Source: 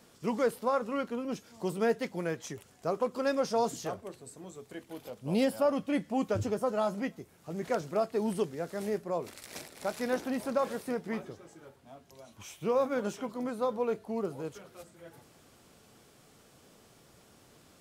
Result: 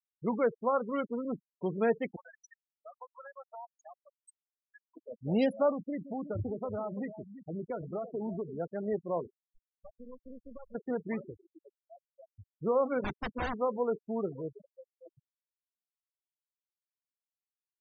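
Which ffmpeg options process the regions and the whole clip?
-filter_complex "[0:a]asettb=1/sr,asplit=3[s0][s1][s2];[s0]atrim=end=2.164[s3];[s1]atrim=start=2.16:end=4.97,asetpts=PTS-STARTPTS,afade=t=in:d=0.004:c=qsin,afade=t=out:st=2.806:d=0.004:c=qsin,highpass=f=720:w=0.5412,highpass=f=720:w=1.3066,acompressor=threshold=0.00708:ratio=4:attack=3.2:release=140:knee=1:detection=peak[s4];[s2]atrim=start=4.966[s5];[s3][s4]acrossfade=d=0.004:c1=hsin:c2=qsin[s6];[s6][s5]acrossfade=d=0.004:c1=qsin:c2=hsin,asettb=1/sr,asplit=3[s7][s8][s9];[s7]atrim=end=5.714[s10];[s8]atrim=start=5.71:end=8.58,asetpts=PTS-STARTPTS,afade=t=in:d=0.004:c=qsin,afade=t=out:st=2.866:d=0.004:c=qsin,acompressor=threshold=0.0251:ratio=5:attack=3.2:release=140:knee=1:detection=peak,aecho=1:1:337:0.282,atrim=end_sample=126567[s11];[s9]atrim=start=8.576[s12];[s10][s11]acrossfade=d=0.004:c1=hsin:c2=qsin[s13];[s13][s12]acrossfade=d=0.004:c1=qsin:c2=hsin,asettb=1/sr,asplit=3[s14][s15][s16];[s14]atrim=end=9.494[s17];[s15]atrim=start=9.49:end=10.75,asetpts=PTS-STARTPTS,afade=t=in:d=0.004:c=qsin,afade=t=out:st=1.256:d=0.004:c=qsin,highpass=f=73:w=0.5412,highpass=f=73:w=1.3066,acrusher=bits=4:dc=4:mix=0:aa=0.000001,acompressor=threshold=0.00631:ratio=3:attack=3.2:release=140:knee=1:detection=peak[s18];[s16]atrim=start=10.746[s19];[s17][s18]acrossfade=d=0.004:c1=hsin:c2=qsin[s20];[s20][s19]acrossfade=d=0.004:c1=qsin:c2=hsin,asettb=1/sr,asplit=3[s21][s22][s23];[s21]atrim=end=13.014[s24];[s22]atrim=start=13.01:end=13.59,asetpts=PTS-STARTPTS,afade=t=in:d=0.004:c=qsin,afade=t=out:st=0.576:d=0.004:c=qsin,agate=range=0.0224:threshold=0.0178:ratio=3:release=100:detection=peak,tiltshelf=f=870:g=6,aeval=exprs='(mod(25.1*val(0)+1,2)-1)/25.1':c=same[s25];[s23]atrim=start=13.586[s26];[s24][s25]acrossfade=d=0.004:c1=hsin:c2=qsin[s27];[s27][s26]acrossfade=d=0.004:c1=qsin:c2=hsin,equalizer=f=67:w=2.7:g=14,afftfilt=real='re*gte(hypot(re,im),0.0251)':imag='im*gte(hypot(re,im),0.0251)':win_size=1024:overlap=0.75"

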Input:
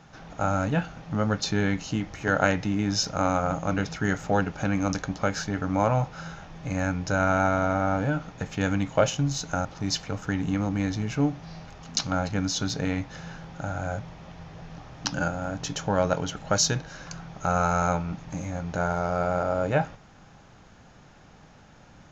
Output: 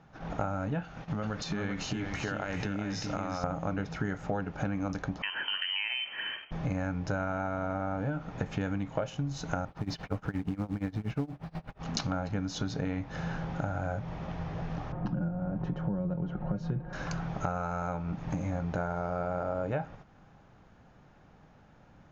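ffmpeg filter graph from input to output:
-filter_complex "[0:a]asettb=1/sr,asplit=3[s0][s1][s2];[s0]atrim=end=0.834[s3];[s1]atrim=start=0.83:end=3.44,asetpts=PTS-STARTPTS,afade=t=in:d=0.004:c=qsin,afade=t=out:st=2.606:d=0.004:c=qsin,tiltshelf=f=1300:g=-4,acompressor=threshold=0.0251:ratio=16:attack=3.2:release=140:knee=1:detection=peak,aecho=1:1:391:0.501,atrim=end_sample=115101[s4];[s2]atrim=start=3.436[s5];[s3][s4]acrossfade=d=0.004:c1=hsin:c2=qsin[s6];[s6][s5]acrossfade=d=0.004:c1=qsin:c2=hsin,asettb=1/sr,asplit=3[s7][s8][s9];[s7]atrim=end=5.224[s10];[s8]atrim=start=5.22:end=6.51,asetpts=PTS-STARTPTS,afade=t=in:d=0.004:c=qsin,afade=t=out:st=1.286:d=0.004:c=qsin,acompressor=threshold=0.0447:ratio=2.5:attack=3.2:release=140:knee=1:detection=peak,lowpass=f=2700:t=q:w=0.5098,lowpass=f=2700:t=q:w=0.6013,lowpass=f=2700:t=q:w=0.9,lowpass=f=2700:t=q:w=2.563,afreqshift=-3200[s11];[s9]atrim=start=6.506[s12];[s10][s11]acrossfade=d=0.004:c1=hsin:c2=qsin[s13];[s13][s12]acrossfade=d=0.004:c1=qsin:c2=hsin,asettb=1/sr,asplit=3[s14][s15][s16];[s14]atrim=end=9.684[s17];[s15]atrim=start=9.68:end=11.79,asetpts=PTS-STARTPTS,afade=t=in:d=0.004:c=qsin,afade=t=out:st=2.106:d=0.004:c=qsin,lowpass=4200,acrusher=bits=5:mode=log:mix=0:aa=0.000001,tremolo=f=8.5:d=0.94[s18];[s16]atrim=start=11.786[s19];[s17][s18]acrossfade=d=0.004:c1=hsin:c2=qsin[s20];[s20][s19]acrossfade=d=0.004:c1=qsin:c2=hsin,asettb=1/sr,asplit=3[s21][s22][s23];[s21]atrim=end=14.924[s24];[s22]atrim=start=14.92:end=16.93,asetpts=PTS-STARTPTS,afade=t=in:d=0.004:c=qsin,afade=t=out:st=2.006:d=0.004:c=qsin,lowpass=1100,aecho=1:1:5.6:0.72,atrim=end_sample=88641,acrossover=split=340|3000[s25][s26][s27];[s26]acompressor=threshold=0.00631:ratio=3:attack=3.2:release=140:knee=2.83:detection=peak[s28];[s25][s28][s27]amix=inputs=3:normalize=0[s29];[s23]atrim=start=16.926[s30];[s24][s29]acrossfade=d=0.004:c1=hsin:c2=qsin[s31];[s31][s30]acrossfade=d=0.004:c1=qsin:c2=hsin,lowpass=f=1700:p=1,agate=range=0.251:threshold=0.00562:ratio=16:detection=peak,acompressor=threshold=0.0158:ratio=10,volume=2.24"

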